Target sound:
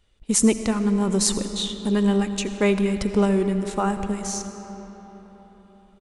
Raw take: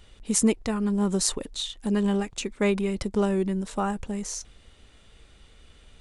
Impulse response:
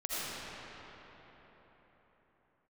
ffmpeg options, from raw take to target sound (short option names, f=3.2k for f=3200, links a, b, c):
-filter_complex "[0:a]agate=range=-16dB:threshold=-41dB:ratio=16:detection=peak,asplit=2[a][b];[1:a]atrim=start_sample=2205[c];[b][c]afir=irnorm=-1:irlink=0,volume=-14dB[d];[a][d]amix=inputs=2:normalize=0,aresample=32000,aresample=44100,volume=2.5dB"